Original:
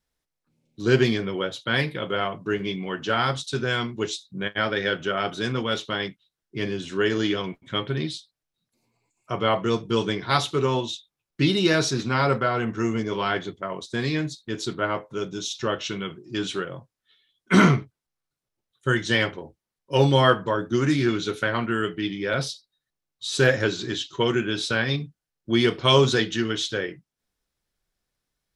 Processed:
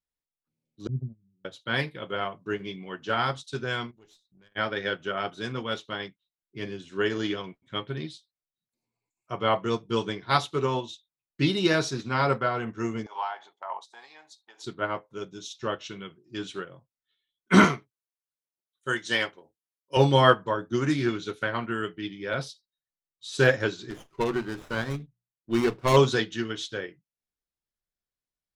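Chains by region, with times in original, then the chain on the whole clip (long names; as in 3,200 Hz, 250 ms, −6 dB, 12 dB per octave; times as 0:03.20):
0:00.87–0:01.45: inverse Chebyshev low-pass filter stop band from 660 Hz, stop band 60 dB + noise gate −28 dBFS, range −17 dB
0:03.91–0:04.52: downward compressor 2 to 1, threshold −45 dBFS + tube saturation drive 33 dB, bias 0.65
0:13.06–0:14.64: downward compressor 10 to 1, threshold −29 dBFS + high-pass with resonance 830 Hz, resonance Q 9.5
0:17.64–0:19.97: high-pass filter 360 Hz 6 dB per octave + high-shelf EQ 6,800 Hz +9 dB
0:23.90–0:25.97: low-pass filter 3,200 Hz 6 dB per octave + mains-hum notches 60/120/180 Hz + windowed peak hold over 9 samples
whole clip: dynamic equaliser 920 Hz, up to +3 dB, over −33 dBFS, Q 1.2; expander for the loud parts 1.5 to 1, over −42 dBFS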